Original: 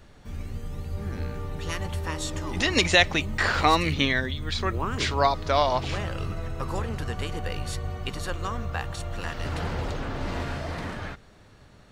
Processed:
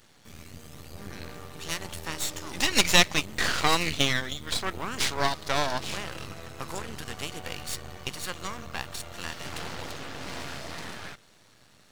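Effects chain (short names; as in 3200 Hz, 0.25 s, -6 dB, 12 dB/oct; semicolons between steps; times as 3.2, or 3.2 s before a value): HPF 110 Hz 12 dB/oct; high shelf 2300 Hz +12 dB; half-wave rectifier; gain -2.5 dB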